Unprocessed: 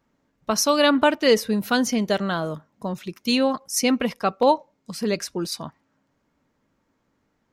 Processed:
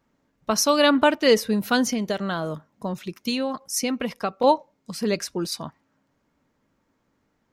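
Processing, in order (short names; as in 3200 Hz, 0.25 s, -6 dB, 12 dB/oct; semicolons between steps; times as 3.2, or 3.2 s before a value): 1.91–4.44 compressor, threshold -22 dBFS, peak gain reduction 6.5 dB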